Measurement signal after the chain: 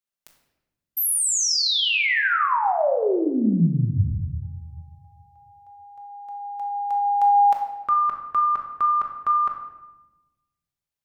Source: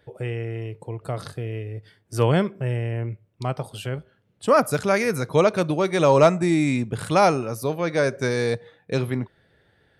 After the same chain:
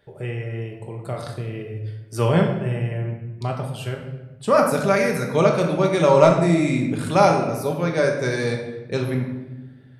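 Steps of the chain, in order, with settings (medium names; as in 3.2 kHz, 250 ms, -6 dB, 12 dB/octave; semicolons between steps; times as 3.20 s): simulated room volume 540 m³, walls mixed, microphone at 1.2 m; trim -1.5 dB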